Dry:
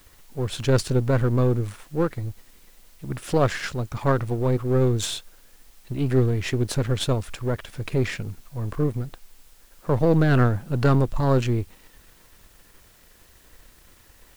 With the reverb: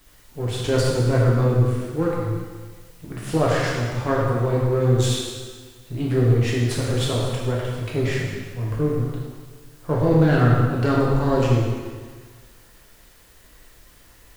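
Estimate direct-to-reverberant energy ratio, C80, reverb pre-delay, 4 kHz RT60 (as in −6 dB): −5.5 dB, 1.5 dB, 4 ms, 1.4 s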